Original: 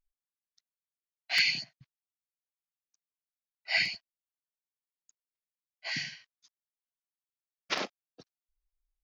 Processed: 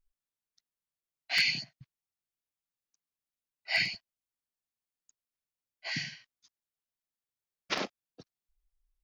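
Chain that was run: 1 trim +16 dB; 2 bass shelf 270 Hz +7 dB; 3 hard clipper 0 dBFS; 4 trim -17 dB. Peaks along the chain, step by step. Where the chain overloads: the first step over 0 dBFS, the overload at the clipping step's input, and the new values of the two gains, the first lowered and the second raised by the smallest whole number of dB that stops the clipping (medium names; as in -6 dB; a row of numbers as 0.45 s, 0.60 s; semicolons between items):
+3.5 dBFS, +4.0 dBFS, 0.0 dBFS, -17.0 dBFS; step 1, 4.0 dB; step 1 +12 dB, step 4 -13 dB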